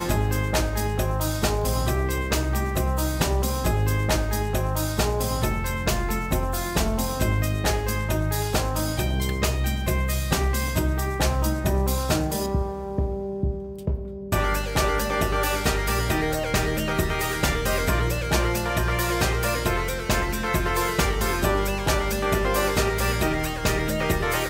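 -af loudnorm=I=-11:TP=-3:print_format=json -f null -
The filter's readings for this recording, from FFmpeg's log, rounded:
"input_i" : "-24.4",
"input_tp" : "-7.7",
"input_lra" : "1.7",
"input_thresh" : "-34.4",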